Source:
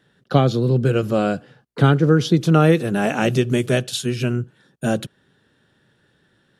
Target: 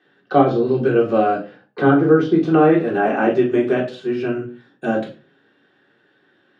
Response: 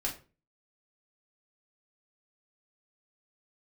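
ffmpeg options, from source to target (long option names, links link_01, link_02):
-filter_complex "[1:a]atrim=start_sample=2205[link_01];[0:a][link_01]afir=irnorm=-1:irlink=0,acrossover=split=1600[link_02][link_03];[link_03]acompressor=threshold=-38dB:ratio=10[link_04];[link_02][link_04]amix=inputs=2:normalize=0,highpass=300,lowpass=3100,volume=1.5dB"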